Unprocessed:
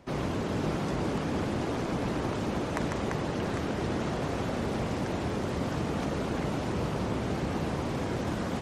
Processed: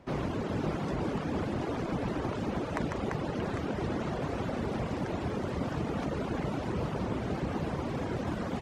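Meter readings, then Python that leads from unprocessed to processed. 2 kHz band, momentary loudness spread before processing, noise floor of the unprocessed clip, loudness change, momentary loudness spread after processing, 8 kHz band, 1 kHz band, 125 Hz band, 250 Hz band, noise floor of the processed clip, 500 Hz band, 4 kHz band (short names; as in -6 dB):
-3.0 dB, 1 LU, -33 dBFS, -2.0 dB, 1 LU, -7.5 dB, -2.0 dB, -2.0 dB, -2.0 dB, -36 dBFS, -2.0 dB, -5.0 dB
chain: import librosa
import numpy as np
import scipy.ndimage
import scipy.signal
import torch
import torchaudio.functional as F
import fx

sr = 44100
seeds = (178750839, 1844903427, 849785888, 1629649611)

y = fx.dereverb_blind(x, sr, rt60_s=0.65)
y = fx.high_shelf(y, sr, hz=4300.0, db=-8.5)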